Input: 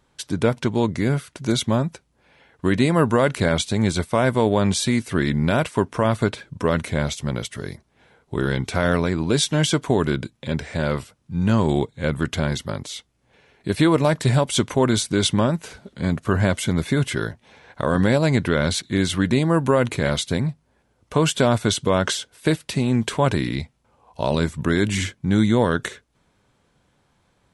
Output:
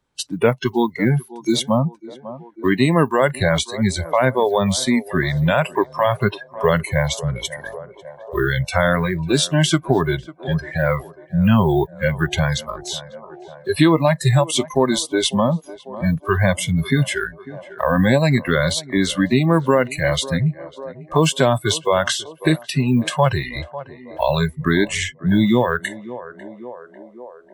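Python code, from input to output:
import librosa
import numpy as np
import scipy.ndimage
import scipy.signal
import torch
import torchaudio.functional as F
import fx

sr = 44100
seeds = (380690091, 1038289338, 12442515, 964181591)

p1 = fx.block_float(x, sr, bits=7)
p2 = fx.rider(p1, sr, range_db=4, speed_s=2.0)
p3 = p1 + F.gain(torch.from_numpy(p2), -1.0).numpy()
p4 = fx.noise_reduce_blind(p3, sr, reduce_db=27)
p5 = fx.echo_banded(p4, sr, ms=546, feedback_pct=62, hz=590.0, wet_db=-18.5)
p6 = fx.band_squash(p5, sr, depth_pct=40)
y = F.gain(torch.from_numpy(p6), -1.0).numpy()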